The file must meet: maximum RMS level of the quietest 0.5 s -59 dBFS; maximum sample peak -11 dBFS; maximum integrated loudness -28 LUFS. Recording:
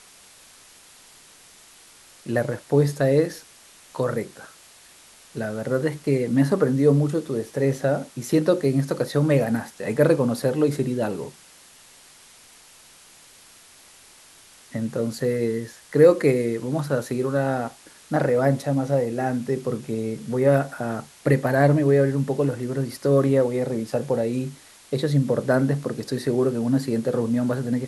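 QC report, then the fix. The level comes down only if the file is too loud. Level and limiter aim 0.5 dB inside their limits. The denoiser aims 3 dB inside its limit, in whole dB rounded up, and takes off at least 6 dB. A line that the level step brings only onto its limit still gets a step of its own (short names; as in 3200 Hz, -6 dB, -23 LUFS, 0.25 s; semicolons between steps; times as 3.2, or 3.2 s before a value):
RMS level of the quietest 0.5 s -50 dBFS: fail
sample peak -4.5 dBFS: fail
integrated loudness -23.0 LUFS: fail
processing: denoiser 7 dB, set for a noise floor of -50 dBFS; gain -5.5 dB; limiter -11.5 dBFS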